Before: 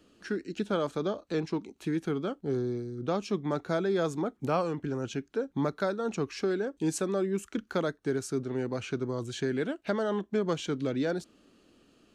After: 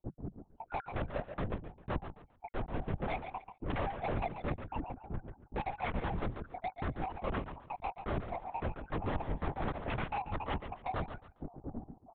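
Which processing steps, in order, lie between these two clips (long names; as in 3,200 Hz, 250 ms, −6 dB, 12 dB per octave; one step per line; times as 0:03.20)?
time-frequency cells dropped at random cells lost 74%
Chebyshev band-pass filter 140–950 Hz, order 4
spectral tilt −4 dB per octave
comb filter 1.3 ms, depth 64%
in parallel at −1.5 dB: downward compressor, threshold −36 dBFS, peak gain reduction 16.5 dB
on the sum: sine wavefolder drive 17 dB, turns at −11 dBFS
pitch vibrato 0.31 Hz 17 cents
soft clipping −27 dBFS, distortion −6 dB
high-frequency loss of the air 250 metres
on a send: repeating echo 136 ms, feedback 26%, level −9 dB
on the sum: linear-prediction vocoder at 8 kHz whisper
level −5.5 dB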